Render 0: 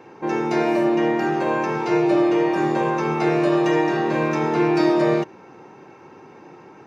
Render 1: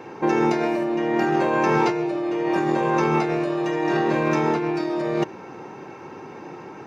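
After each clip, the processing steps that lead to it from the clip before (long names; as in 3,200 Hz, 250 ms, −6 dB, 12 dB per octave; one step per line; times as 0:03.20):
compressor whose output falls as the input rises −24 dBFS, ratio −1
level +2 dB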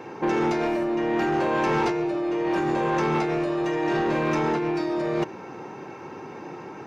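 soft clipping −18 dBFS, distortion −14 dB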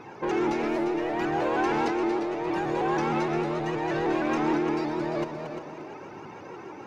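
flanger 0.8 Hz, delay 0.7 ms, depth 3.3 ms, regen +36%
echo machine with several playback heads 116 ms, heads second and third, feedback 42%, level −9 dB
pitch modulation by a square or saw wave saw up 6.4 Hz, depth 100 cents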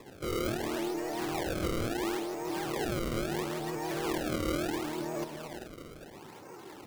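sample-and-hold swept by an LFO 29×, swing 160% 0.73 Hz
buffer that repeats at 0:01.54/0:05.57, samples 2,048, times 1
level −6.5 dB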